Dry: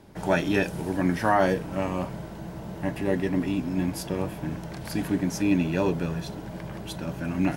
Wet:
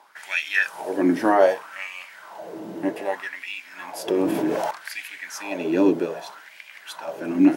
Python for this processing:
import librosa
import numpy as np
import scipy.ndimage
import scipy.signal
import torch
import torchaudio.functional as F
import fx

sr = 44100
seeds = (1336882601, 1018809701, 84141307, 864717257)

y = fx.filter_lfo_highpass(x, sr, shape='sine', hz=0.64, low_hz=290.0, high_hz=2400.0, q=4.1)
y = fx.env_flatten(y, sr, amount_pct=70, at=(4.08, 4.71))